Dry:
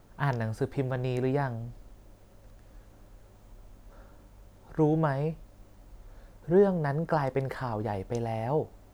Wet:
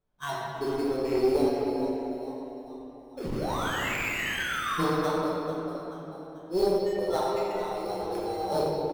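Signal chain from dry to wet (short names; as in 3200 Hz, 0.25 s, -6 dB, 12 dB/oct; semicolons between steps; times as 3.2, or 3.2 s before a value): 4.82–7.53 HPF 690 Hz 6 dB/oct; spectral noise reduction 26 dB; frequency-shifting echo 0.439 s, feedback 43%, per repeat +110 Hz, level -13.5 dB; 3.17–4.83 painted sound fall 1000–5400 Hz -35 dBFS; sample-rate reducer 4800 Hz, jitter 0%; modulation noise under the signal 23 dB; high shelf 5300 Hz -7 dB; shoebox room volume 200 m³, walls hard, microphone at 1.1 m; tube stage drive 13 dB, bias 0.5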